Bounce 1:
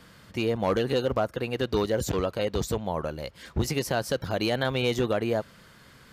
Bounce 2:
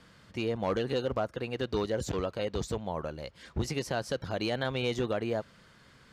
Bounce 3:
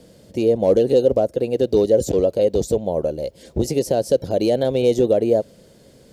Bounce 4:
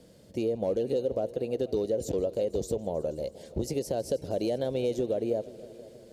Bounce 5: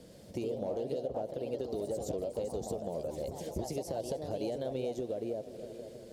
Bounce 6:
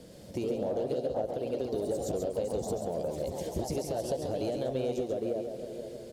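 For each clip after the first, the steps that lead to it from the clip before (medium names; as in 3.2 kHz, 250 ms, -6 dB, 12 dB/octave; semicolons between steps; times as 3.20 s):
low-pass 8.4 kHz 12 dB/octave; trim -5 dB
FFT filter 130 Hz 0 dB, 560 Hz +10 dB, 1.2 kHz -16 dB, 12 kHz +9 dB; trim +7.5 dB
compression 3:1, threshold -19 dBFS, peak gain reduction 7 dB; multi-head delay 160 ms, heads all three, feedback 53%, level -23 dB; trim -7.5 dB
compression 3:1, threshold -38 dBFS, peak gain reduction 10.5 dB; ever faster or slower copies 108 ms, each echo +2 st, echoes 3, each echo -6 dB; trim +1.5 dB
in parallel at -11 dB: hard clipper -31.5 dBFS, distortion -15 dB; on the sum: delay 137 ms -6 dB; trim +1 dB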